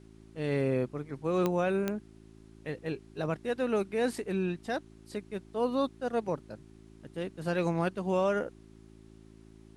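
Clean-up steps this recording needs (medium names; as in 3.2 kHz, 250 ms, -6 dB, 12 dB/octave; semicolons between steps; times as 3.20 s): de-click; de-hum 54.5 Hz, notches 7; expander -46 dBFS, range -21 dB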